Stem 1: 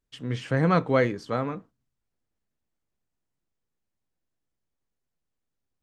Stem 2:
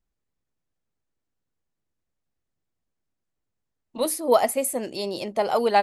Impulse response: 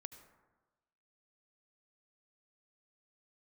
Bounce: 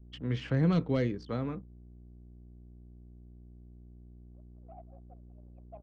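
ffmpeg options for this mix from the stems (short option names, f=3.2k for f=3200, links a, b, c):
-filter_complex "[0:a]volume=12dB,asoftclip=hard,volume=-12dB,aeval=exprs='val(0)+0.00447*(sin(2*PI*60*n/s)+sin(2*PI*2*60*n/s)/2+sin(2*PI*3*60*n/s)/3+sin(2*PI*4*60*n/s)/4+sin(2*PI*5*60*n/s)/5)':c=same,volume=-2dB[a];[1:a]asoftclip=type=tanh:threshold=-23dB,asplit=3[b][c][d];[b]bandpass=f=730:t=q:w=8,volume=0dB[e];[c]bandpass=f=1.09k:t=q:w=8,volume=-6dB[f];[d]bandpass=f=2.44k:t=q:w=8,volume=-9dB[g];[e][f][g]amix=inputs=3:normalize=0,adelay=350,volume=-14.5dB,afade=t=in:st=4.56:d=0.74:silence=0.375837,asplit=2[h][i];[i]volume=-8.5dB,aecho=0:1:184:1[j];[a][h][j]amix=inputs=3:normalize=0,anlmdn=0.0158,lowpass=4.1k,acrossover=split=400|3000[k][l][m];[l]acompressor=threshold=-42dB:ratio=4[n];[k][n][m]amix=inputs=3:normalize=0"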